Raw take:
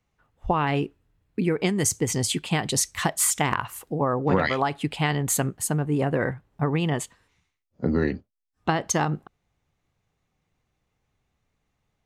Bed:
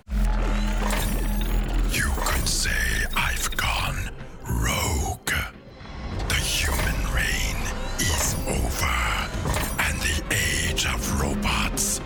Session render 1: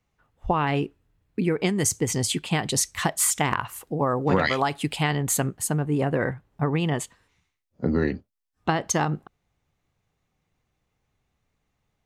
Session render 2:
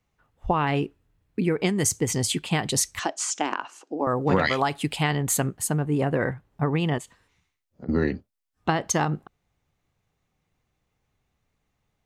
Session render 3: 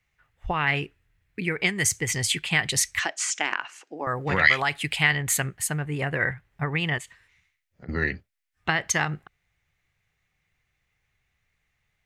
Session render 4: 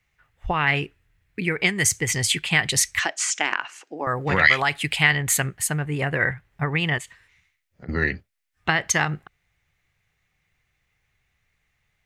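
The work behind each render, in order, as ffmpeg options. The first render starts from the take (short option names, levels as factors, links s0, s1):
-filter_complex "[0:a]asettb=1/sr,asplit=3[s0][s1][s2];[s0]atrim=end=3.994[s3];[s1]atrim=start=3.99:end=5.03,asetpts=PTS-STARTPTS,afade=t=in:d=0.004:c=qsin,afade=t=out:st=1.036:d=0.004:c=qsin,highshelf=f=4500:g=10[s4];[s2]atrim=start=5.026[s5];[s3][s4]acrossfade=d=0.004:c1=hsin:c2=qsin[s6];[s6][s5]acrossfade=d=0.004:c1=qsin:c2=hsin"
-filter_complex "[0:a]asettb=1/sr,asplit=3[s0][s1][s2];[s0]atrim=end=2.994[s3];[s1]atrim=start=2.99:end=4.07,asetpts=PTS-STARTPTS,afade=t=in:d=0.004:c=qsin,afade=t=out:st=1.076:d=0.004:c=qsin,highpass=f=290:w=0.5412,highpass=f=290:w=1.3066,equalizer=f=290:t=q:w=4:g=5,equalizer=f=470:t=q:w=4:g=-4,equalizer=f=1100:t=q:w=4:g=-5,equalizer=f=2000:t=q:w=4:g=-9,equalizer=f=3600:t=q:w=4:g=-6,equalizer=f=6200:t=q:w=4:g=4,lowpass=f=6700:w=0.5412,lowpass=f=6700:w=1.3066[s4];[s2]atrim=start=4.066[s5];[s3][s4]acrossfade=d=0.004:c1=hsin:c2=qsin[s6];[s6][s5]acrossfade=d=0.004:c1=qsin:c2=hsin,asettb=1/sr,asplit=3[s7][s8][s9];[s7]atrim=end=6.984[s10];[s8]atrim=start=6.98:end=7.89,asetpts=PTS-STARTPTS,afade=t=in:d=0.004:c=qsin,afade=t=out:st=0.906:d=0.004:c=qsin,acompressor=threshold=0.0141:ratio=6:attack=3.2:release=140:knee=1:detection=peak[s11];[s9]atrim=start=7.886[s12];[s10][s11]acrossfade=d=0.004:c1=hsin:c2=qsin[s13];[s13][s12]acrossfade=d=0.004:c1=qsin:c2=hsin"
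-af "equalizer=f=250:t=o:w=1:g=-10,equalizer=f=500:t=o:w=1:g=-4,equalizer=f=1000:t=o:w=1:g=-5,equalizer=f=2000:t=o:w=1:g=11"
-af "volume=1.41,alimiter=limit=0.794:level=0:latency=1"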